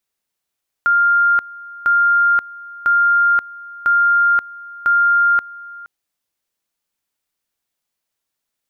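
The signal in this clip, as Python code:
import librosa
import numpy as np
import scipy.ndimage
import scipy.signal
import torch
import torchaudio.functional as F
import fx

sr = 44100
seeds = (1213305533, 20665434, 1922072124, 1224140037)

y = fx.two_level_tone(sr, hz=1400.0, level_db=-10.5, drop_db=21.0, high_s=0.53, low_s=0.47, rounds=5)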